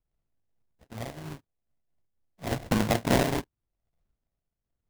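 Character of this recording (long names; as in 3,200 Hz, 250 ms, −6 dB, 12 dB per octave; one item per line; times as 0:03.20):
a buzz of ramps at a fixed pitch in blocks of 64 samples
phaser sweep stages 12, 0.72 Hz, lowest notch 460–1,300 Hz
aliases and images of a low sample rate 1,300 Hz, jitter 20%
amplitude modulation by smooth noise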